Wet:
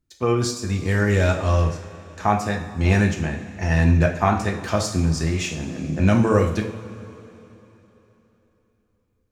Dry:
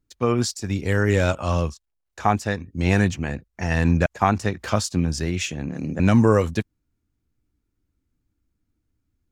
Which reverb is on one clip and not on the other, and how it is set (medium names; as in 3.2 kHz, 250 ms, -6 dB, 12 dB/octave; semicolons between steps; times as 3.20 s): two-slope reverb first 0.52 s, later 3.5 s, from -16 dB, DRR 1 dB; trim -2 dB